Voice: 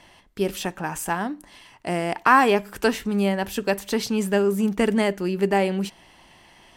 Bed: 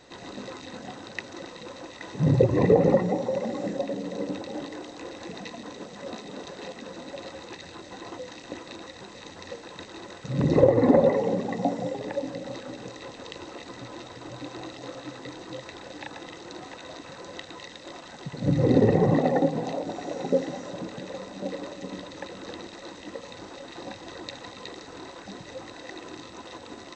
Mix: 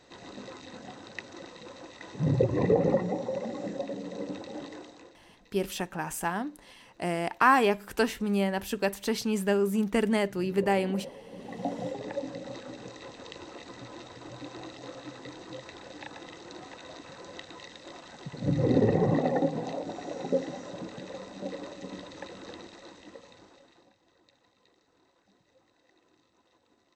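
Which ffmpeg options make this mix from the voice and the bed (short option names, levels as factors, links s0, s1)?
-filter_complex "[0:a]adelay=5150,volume=0.562[s0];[1:a]volume=5.01,afade=t=out:st=4.74:d=0.45:silence=0.125893,afade=t=in:st=11.3:d=0.52:silence=0.112202,afade=t=out:st=22.31:d=1.6:silence=0.0794328[s1];[s0][s1]amix=inputs=2:normalize=0"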